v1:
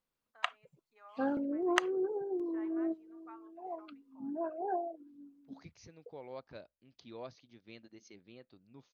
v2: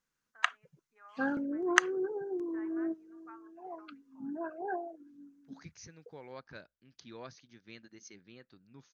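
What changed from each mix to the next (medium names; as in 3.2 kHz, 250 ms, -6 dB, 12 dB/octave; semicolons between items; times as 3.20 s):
first voice: add distance through air 480 m; master: add fifteen-band graphic EQ 160 Hz +4 dB, 630 Hz -5 dB, 1.6 kHz +10 dB, 6.3 kHz +10 dB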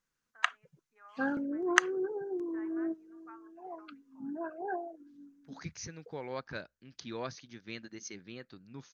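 second voice +8.0 dB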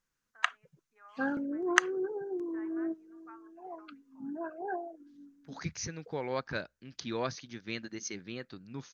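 second voice +5.0 dB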